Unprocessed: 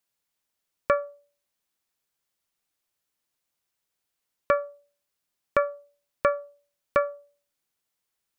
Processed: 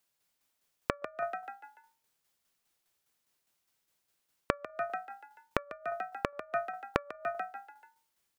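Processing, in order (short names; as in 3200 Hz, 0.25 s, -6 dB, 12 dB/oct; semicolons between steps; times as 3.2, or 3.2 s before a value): frequency-shifting echo 0.145 s, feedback 44%, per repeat +55 Hz, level -4 dB; flipped gate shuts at -16 dBFS, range -26 dB; tremolo saw down 4.9 Hz, depth 50%; gain +4 dB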